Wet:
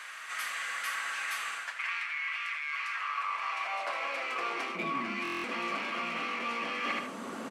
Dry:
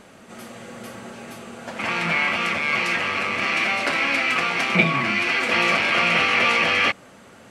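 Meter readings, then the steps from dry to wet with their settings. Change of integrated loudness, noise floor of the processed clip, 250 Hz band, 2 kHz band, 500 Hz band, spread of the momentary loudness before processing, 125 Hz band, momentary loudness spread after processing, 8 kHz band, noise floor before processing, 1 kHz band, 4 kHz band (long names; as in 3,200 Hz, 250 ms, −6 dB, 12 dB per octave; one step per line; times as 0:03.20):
−14.0 dB, −43 dBFS, −13.0 dB, −13.5 dB, −13.5 dB, 20 LU, −22.5 dB, 2 LU, −8.0 dB, −48 dBFS, −9.0 dB, −14.5 dB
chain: in parallel at −7 dB: hard clipping −18.5 dBFS, distortion −11 dB
on the sum: high-pass filter sweep 1,800 Hz → 250 Hz, 0:02.65–0:05.00
repeating echo 77 ms, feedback 25%, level −13 dB
reversed playback
downward compressor 6 to 1, threshold −31 dBFS, peak gain reduction 20 dB
reversed playback
parametric band 1,100 Hz +9 dB 0.38 octaves
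speech leveller within 4 dB 0.5 s
buffer that repeats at 0:05.23, samples 1,024, times 8
level −3.5 dB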